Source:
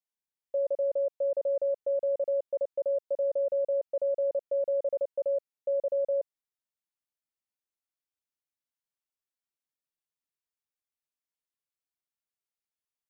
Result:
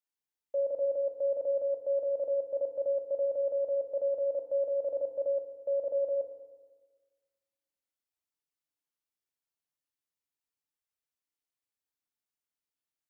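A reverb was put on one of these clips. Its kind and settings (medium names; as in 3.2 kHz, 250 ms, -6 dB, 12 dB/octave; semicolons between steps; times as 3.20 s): FDN reverb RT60 1.4 s, low-frequency decay 1.1×, high-frequency decay 1×, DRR 2.5 dB; trim -3 dB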